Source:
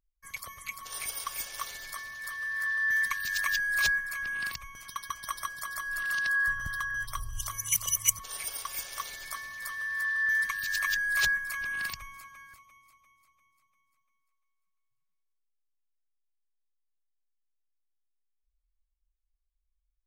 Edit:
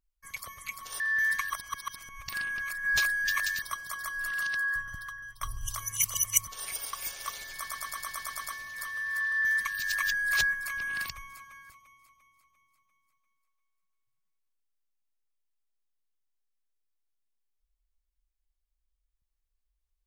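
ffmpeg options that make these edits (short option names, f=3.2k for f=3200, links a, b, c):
-filter_complex "[0:a]asplit=13[a][b][c][d][e][f][g][h][i][j][k][l][m];[a]atrim=end=1.002[n];[b]atrim=start=2.718:end=3.222[o];[c]atrim=start=3.218:end=5.342,asetpts=PTS-STARTPTS,areverse[p];[d]atrim=start=5.338:end=7.13,asetpts=PTS-STARTPTS,afade=t=out:st=0.622:d=1.17:silence=0.188365[q];[e]atrim=start=7.13:end=9.392,asetpts=PTS-STARTPTS,afade=t=in:d=0.004:c=hsin:silence=0.188365[r];[f]atrim=start=9.278:end=9.392[s];[g]atrim=start=9.278:end=9.392[t];[h]atrim=start=9.278:end=9.392[u];[i]atrim=start=9.278:end=9.392[v];[j]atrim=start=9.278:end=9.392[w];[k]atrim=start=9.278:end=9.392[x];[l]atrim=start=9.278:end=9.392[y];[m]atrim=start=9.278[z];[n][o]acrossfade=d=0.004:c1=hsin:c2=hsin[aa];[aa][p]acrossfade=d=0.004:c1=hsin:c2=hsin[ab];[q][r]concat=n=2:v=0:a=1[ac];[ab][ac]acrossfade=d=0.004:c1=hsin:c2=hsin[ad];[ad][s]acrossfade=d=0.004:c1=hsin:c2=hsin[ae];[ae][t]acrossfade=d=0.004:c1=hsin:c2=hsin[af];[af][u]acrossfade=d=0.004:c1=hsin:c2=hsin[ag];[ag][v]acrossfade=d=0.004:c1=hsin:c2=hsin[ah];[ah][w]acrossfade=d=0.004:c1=hsin:c2=hsin[ai];[ai][x]acrossfade=d=0.004:c1=hsin:c2=hsin[aj];[aj][y]acrossfade=d=0.004:c1=hsin:c2=hsin[ak];[ak][z]acrossfade=d=0.004:c1=hsin:c2=hsin"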